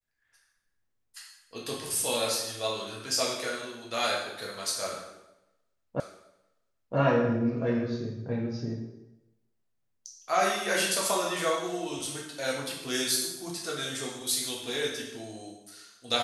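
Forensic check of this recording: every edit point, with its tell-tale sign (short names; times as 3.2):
6 repeat of the last 0.97 s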